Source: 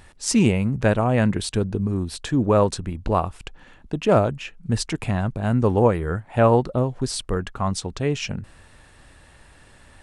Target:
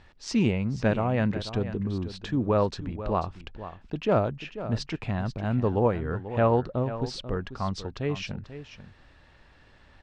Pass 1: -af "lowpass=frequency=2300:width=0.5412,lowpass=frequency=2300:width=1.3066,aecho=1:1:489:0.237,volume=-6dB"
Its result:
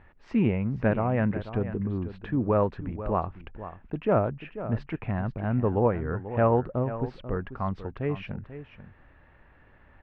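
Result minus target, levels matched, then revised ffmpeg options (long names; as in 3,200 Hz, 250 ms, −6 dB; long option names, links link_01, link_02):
4,000 Hz band −13.5 dB
-af "lowpass=frequency=5300:width=0.5412,lowpass=frequency=5300:width=1.3066,aecho=1:1:489:0.237,volume=-6dB"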